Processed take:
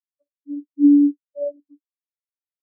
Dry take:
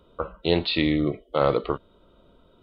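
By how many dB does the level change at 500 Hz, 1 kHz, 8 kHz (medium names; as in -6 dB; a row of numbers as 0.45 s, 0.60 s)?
-7.0 dB, under -40 dB, no reading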